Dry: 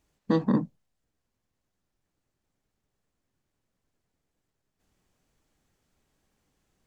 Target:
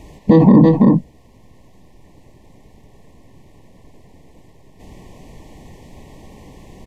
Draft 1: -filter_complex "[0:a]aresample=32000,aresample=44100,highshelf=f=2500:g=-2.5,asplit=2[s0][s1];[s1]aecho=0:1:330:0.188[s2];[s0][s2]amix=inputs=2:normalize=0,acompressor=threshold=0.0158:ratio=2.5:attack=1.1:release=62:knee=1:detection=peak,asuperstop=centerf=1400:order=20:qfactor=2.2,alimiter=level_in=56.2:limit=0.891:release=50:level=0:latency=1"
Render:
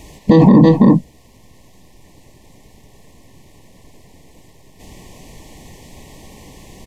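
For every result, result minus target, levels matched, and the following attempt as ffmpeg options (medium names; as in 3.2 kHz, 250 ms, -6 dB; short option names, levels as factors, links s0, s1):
4 kHz band +6.5 dB; compression: peak gain reduction -4.5 dB
-filter_complex "[0:a]aresample=32000,aresample=44100,highshelf=f=2500:g=-13,asplit=2[s0][s1];[s1]aecho=0:1:330:0.188[s2];[s0][s2]amix=inputs=2:normalize=0,acompressor=threshold=0.0158:ratio=2.5:attack=1.1:release=62:knee=1:detection=peak,asuperstop=centerf=1400:order=20:qfactor=2.2,alimiter=level_in=56.2:limit=0.891:release=50:level=0:latency=1"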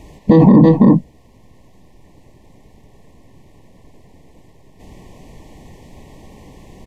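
compression: peak gain reduction -5 dB
-filter_complex "[0:a]aresample=32000,aresample=44100,highshelf=f=2500:g=-13,asplit=2[s0][s1];[s1]aecho=0:1:330:0.188[s2];[s0][s2]amix=inputs=2:normalize=0,acompressor=threshold=0.00631:ratio=2.5:attack=1.1:release=62:knee=1:detection=peak,asuperstop=centerf=1400:order=20:qfactor=2.2,alimiter=level_in=56.2:limit=0.891:release=50:level=0:latency=1"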